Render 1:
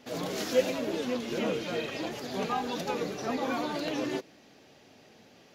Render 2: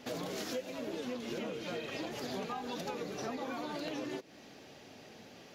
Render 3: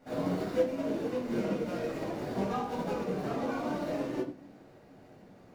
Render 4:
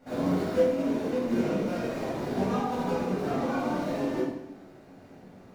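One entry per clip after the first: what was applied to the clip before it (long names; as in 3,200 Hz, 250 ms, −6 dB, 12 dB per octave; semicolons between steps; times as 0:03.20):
downward compressor 10 to 1, threshold −39 dBFS, peak gain reduction 20.5 dB; level +3 dB
running median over 15 samples; rectangular room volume 760 cubic metres, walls furnished, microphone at 7.4 metres; expander for the loud parts 1.5 to 1, over −43 dBFS
dense smooth reverb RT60 0.77 s, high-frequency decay 0.9×, DRR 0.5 dB; level +1.5 dB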